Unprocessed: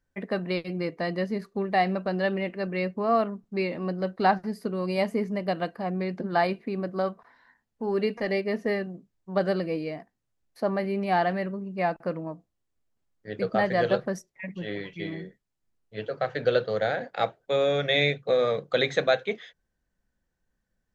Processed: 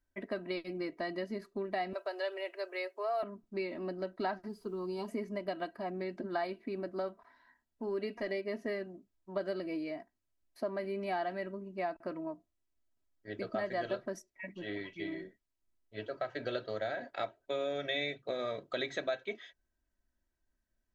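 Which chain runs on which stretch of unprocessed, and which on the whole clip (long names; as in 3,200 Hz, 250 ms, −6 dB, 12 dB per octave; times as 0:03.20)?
0:01.93–0:03.23: Butterworth high-pass 420 Hz + high-shelf EQ 6,000 Hz +10 dB
0:04.47–0:05.07: high-shelf EQ 5,700 Hz −10.5 dB + phaser with its sweep stopped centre 400 Hz, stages 8 + background noise pink −70 dBFS
whole clip: comb filter 3.1 ms, depth 68%; downward compressor 2.5 to 1, threshold −27 dBFS; level −7 dB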